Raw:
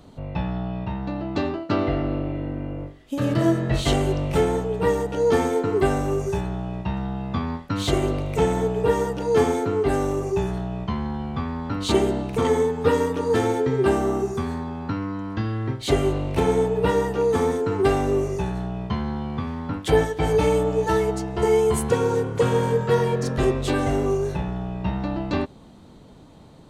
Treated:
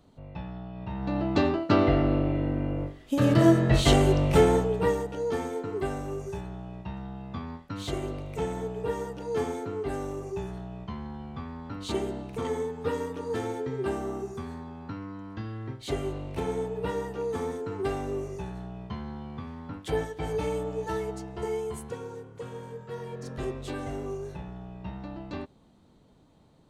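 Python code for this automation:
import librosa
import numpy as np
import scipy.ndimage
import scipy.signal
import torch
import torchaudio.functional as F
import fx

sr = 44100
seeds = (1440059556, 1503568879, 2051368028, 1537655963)

y = fx.gain(x, sr, db=fx.line((0.73, -11.5), (1.17, 1.0), (4.56, 1.0), (5.28, -10.5), (21.3, -10.5), (22.24, -19.5), (22.88, -19.5), (23.34, -12.5)))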